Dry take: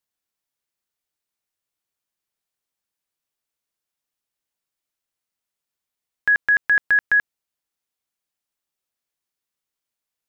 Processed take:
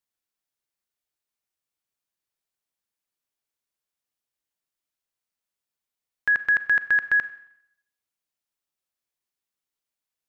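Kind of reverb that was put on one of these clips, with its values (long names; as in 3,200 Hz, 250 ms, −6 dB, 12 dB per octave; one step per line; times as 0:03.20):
four-comb reverb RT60 0.74 s, combs from 30 ms, DRR 14 dB
level −3.5 dB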